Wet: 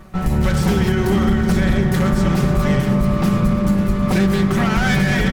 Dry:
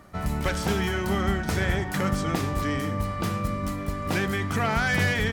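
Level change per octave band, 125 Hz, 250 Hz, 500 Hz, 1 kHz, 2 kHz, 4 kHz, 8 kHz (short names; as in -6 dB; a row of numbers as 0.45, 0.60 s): +10.5, +12.5, +8.0, +4.5, +3.5, +4.5, +4.5 dB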